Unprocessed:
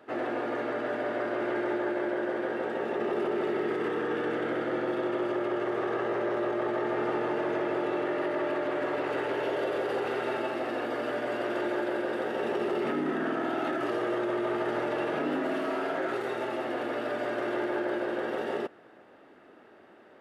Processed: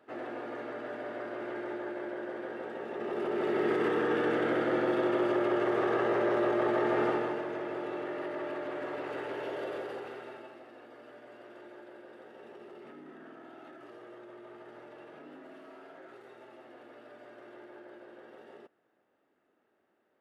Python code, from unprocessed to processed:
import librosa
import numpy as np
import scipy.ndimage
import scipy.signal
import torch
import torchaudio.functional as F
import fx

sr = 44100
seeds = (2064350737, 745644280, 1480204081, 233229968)

y = fx.gain(x, sr, db=fx.line((2.89, -8.0), (3.68, 1.5), (7.05, 1.5), (7.47, -7.0), (9.74, -7.0), (10.68, -20.0)))